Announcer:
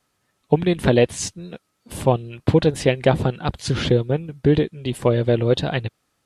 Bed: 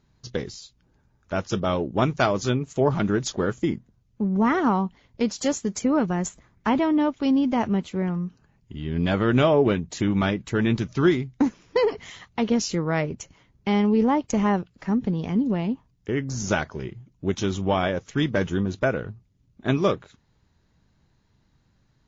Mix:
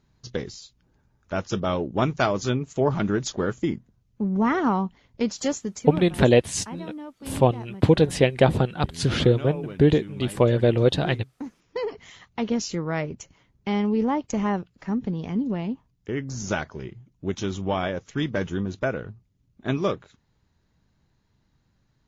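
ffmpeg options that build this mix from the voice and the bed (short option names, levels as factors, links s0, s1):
-filter_complex "[0:a]adelay=5350,volume=0.891[s0];[1:a]volume=4.22,afade=t=out:st=5.44:d=0.65:silence=0.16788,afade=t=in:st=11.34:d=1.06:silence=0.211349[s1];[s0][s1]amix=inputs=2:normalize=0"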